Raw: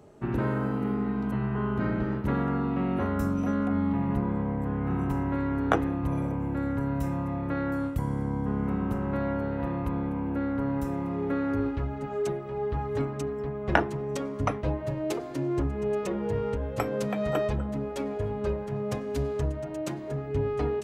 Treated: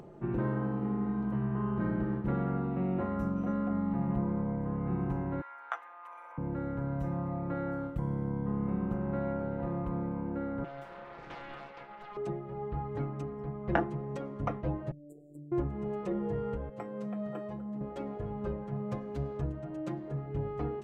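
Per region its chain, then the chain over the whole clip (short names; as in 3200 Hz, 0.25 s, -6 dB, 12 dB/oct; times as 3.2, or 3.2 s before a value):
5.41–6.38 HPF 1000 Hz 24 dB/oct + bell 4100 Hz -5.5 dB 0.23 oct
10.64–12.17 Bessel high-pass 800 Hz, order 6 + bell 3100 Hz +6.5 dB 1.4 oct + Doppler distortion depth 0.97 ms
14.91–15.52 brick-wall FIR band-stop 670–7000 Hz + pre-emphasis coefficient 0.8 + robotiser 147 Hz
16.69–17.81 HPF 120 Hz + modulation noise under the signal 35 dB + resonator 210 Hz, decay 0.26 s, mix 70%
whole clip: LPF 1100 Hz 6 dB/oct; comb 5.8 ms, depth 57%; upward compressor, threshold -38 dBFS; gain -4.5 dB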